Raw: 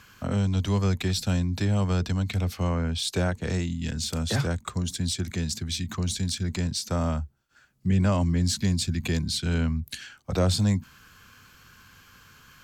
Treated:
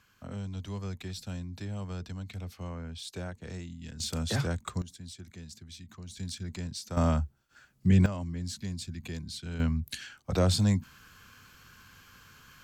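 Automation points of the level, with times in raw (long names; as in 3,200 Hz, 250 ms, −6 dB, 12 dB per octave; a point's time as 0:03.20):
−13 dB
from 0:04.00 −4 dB
from 0:04.82 −17 dB
from 0:06.17 −9.5 dB
from 0:06.97 +1 dB
from 0:08.06 −12 dB
from 0:09.60 −2 dB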